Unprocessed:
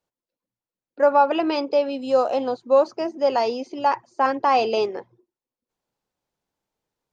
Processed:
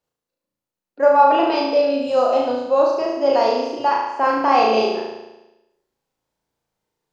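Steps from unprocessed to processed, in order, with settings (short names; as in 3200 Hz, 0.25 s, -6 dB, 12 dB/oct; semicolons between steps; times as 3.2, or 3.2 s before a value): flutter echo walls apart 6.2 m, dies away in 1 s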